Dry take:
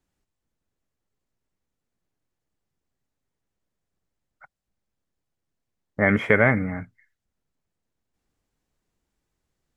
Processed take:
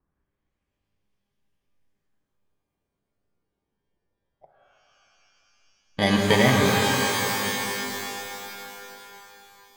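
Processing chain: FFT order left unsorted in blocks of 32 samples; LFO low-pass sine 0.21 Hz 410–3300 Hz; shimmer reverb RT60 3.1 s, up +12 st, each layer -2 dB, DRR 1.5 dB

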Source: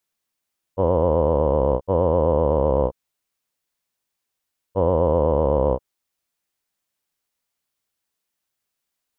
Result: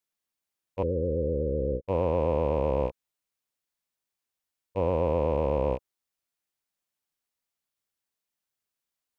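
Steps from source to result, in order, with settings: rattling part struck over -42 dBFS, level -30 dBFS; 0.83–1.88 steep low-pass 520 Hz 72 dB/oct; gain -7 dB

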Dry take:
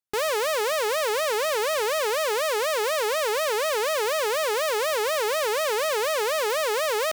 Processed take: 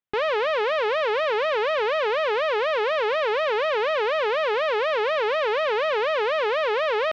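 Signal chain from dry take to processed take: LPF 3400 Hz 24 dB/oct; gain +2 dB

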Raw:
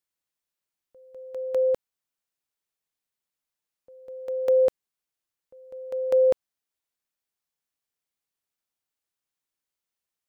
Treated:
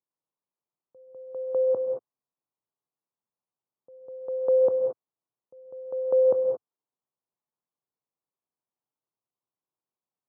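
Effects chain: elliptic band-pass 110–1100 Hz, stop band 40 dB; non-linear reverb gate 0.25 s rising, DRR 4 dB

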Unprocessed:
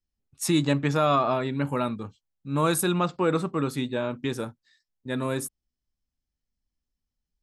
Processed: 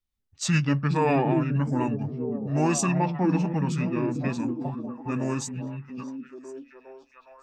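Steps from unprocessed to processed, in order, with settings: delay with a stepping band-pass 0.411 s, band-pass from 190 Hz, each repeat 0.7 oct, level -1 dB; formant shift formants -6 st

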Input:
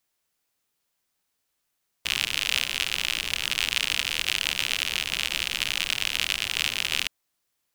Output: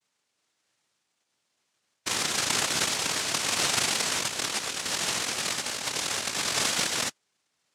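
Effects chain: arpeggiated vocoder minor triad, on C4, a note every 0.326 s; dynamic EQ 420 Hz, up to +5 dB, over -46 dBFS, Q 0.89; 4.06–6.53 negative-ratio compressor -30 dBFS, ratio -0.5; noise vocoder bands 1

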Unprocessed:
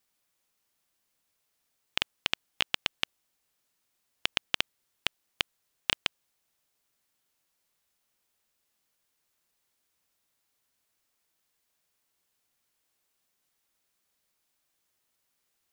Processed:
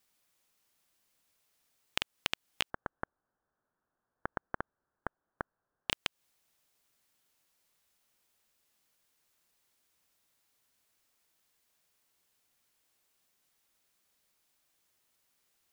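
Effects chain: 2.7–5.9 elliptic low-pass 1600 Hz, stop band 40 dB; compressor 6:1, threshold -30 dBFS, peak gain reduction 10 dB; gain +2 dB

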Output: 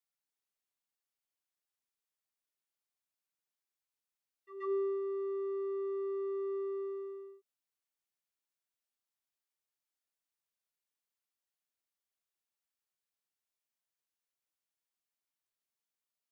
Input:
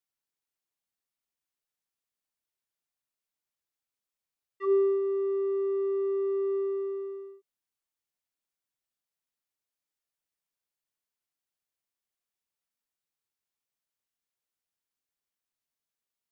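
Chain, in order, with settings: low shelf 270 Hz -6.5 dB; in parallel at -1 dB: limiter -30 dBFS, peak gain reduction 10 dB; on the sum: pre-echo 0.131 s -13 dB; gain -9 dB

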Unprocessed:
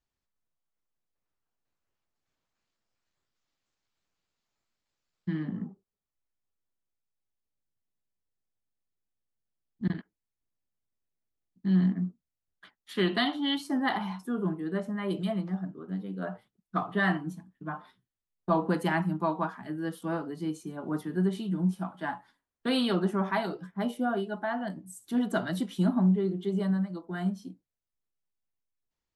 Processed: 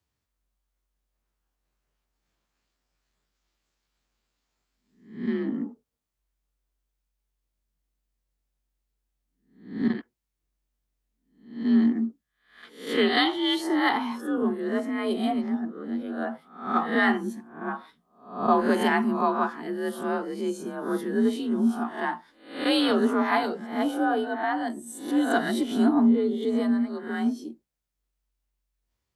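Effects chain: spectral swells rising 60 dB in 0.49 s; frequency shift +47 Hz; gain +3.5 dB

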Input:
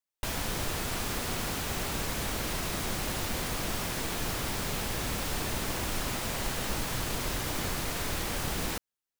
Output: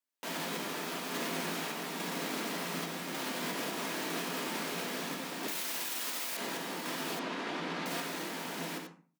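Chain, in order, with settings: tracing distortion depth 0.14 ms; wow and flutter 22 cents; echo 89 ms -6.5 dB; random-step tremolo, depth 55%; 5.48–6.37 tilt +3.5 dB/oct; 7.19–7.86 LPF 3800 Hz 12 dB/oct; limiter -26 dBFS, peak gain reduction 10 dB; Chebyshev high-pass 170 Hz, order 5; reverb RT60 0.40 s, pre-delay 3 ms, DRR 2.5 dB

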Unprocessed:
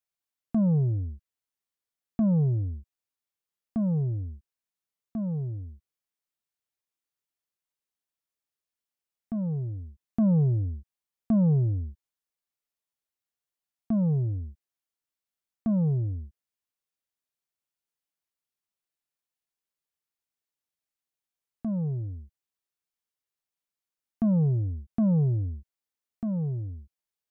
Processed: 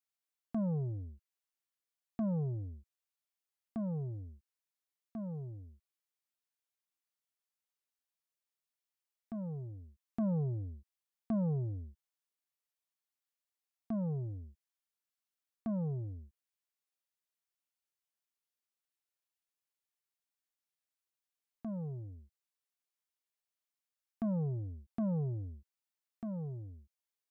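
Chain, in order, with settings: low shelf 360 Hz -10 dB; gain -3 dB

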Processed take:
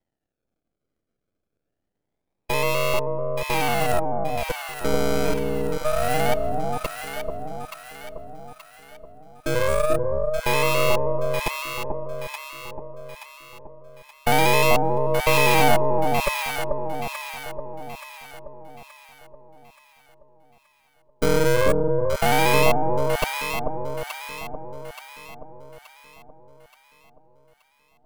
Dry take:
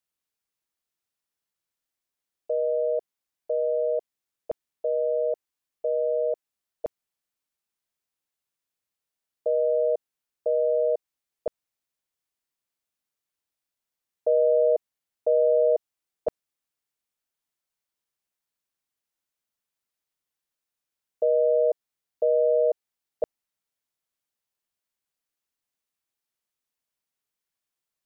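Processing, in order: decimation with a swept rate 38×, swing 60% 0.25 Hz; formant shift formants +2 st; half-wave rectifier; on a send: echo with dull and thin repeats by turns 0.438 s, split 910 Hz, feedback 66%, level -2 dB; on the sum: gain +6.5 dB

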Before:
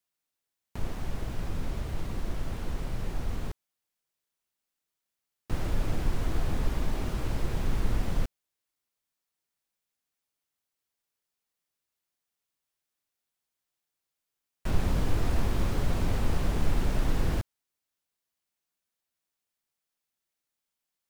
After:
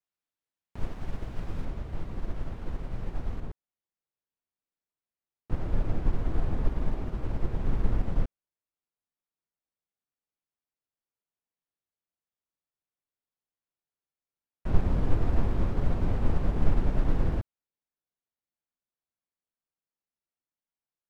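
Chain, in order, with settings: LPF 2900 Hz 6 dB/oct, from 1.65 s 1700 Hz, from 3.4 s 1000 Hz; upward expander 1.5:1, over -35 dBFS; gain +4.5 dB

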